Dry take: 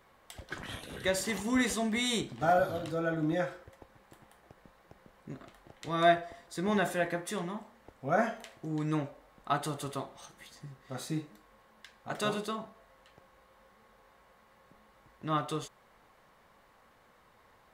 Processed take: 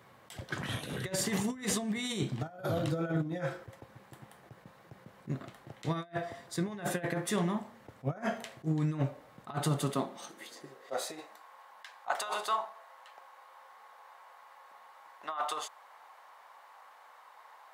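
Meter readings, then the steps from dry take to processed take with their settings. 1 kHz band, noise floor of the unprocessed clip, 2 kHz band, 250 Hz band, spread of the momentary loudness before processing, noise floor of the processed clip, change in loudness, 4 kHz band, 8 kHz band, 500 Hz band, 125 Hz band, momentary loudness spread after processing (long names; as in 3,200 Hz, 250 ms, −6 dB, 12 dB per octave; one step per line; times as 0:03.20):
−3.5 dB, −64 dBFS, −4.5 dB, −1.0 dB, 20 LU, −58 dBFS, −2.5 dB, −2.0 dB, +2.0 dB, −5.0 dB, +4.0 dB, 23 LU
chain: compressor whose output falls as the input rises −34 dBFS, ratio −0.5
high-pass filter sweep 120 Hz → 850 Hz, 0:09.55–0:11.40
level that may rise only so fast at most 450 dB per second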